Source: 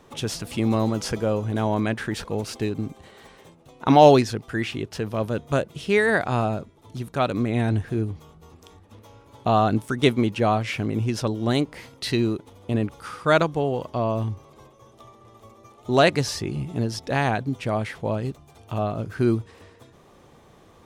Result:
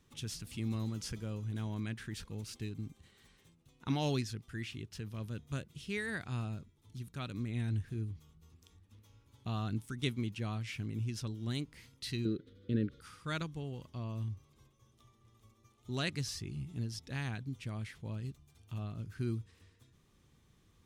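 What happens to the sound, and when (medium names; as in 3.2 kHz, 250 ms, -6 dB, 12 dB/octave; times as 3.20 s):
12.25–13.01 s: FFT filter 100 Hz 0 dB, 140 Hz +4 dB, 530 Hz +13 dB, 820 Hz -22 dB, 1.5 kHz +10 dB, 2.5 kHz -3 dB, 4 kHz +5 dB, 6.2 kHz -11 dB, 11 kHz -16 dB
whole clip: amplifier tone stack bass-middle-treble 6-0-2; trim +3.5 dB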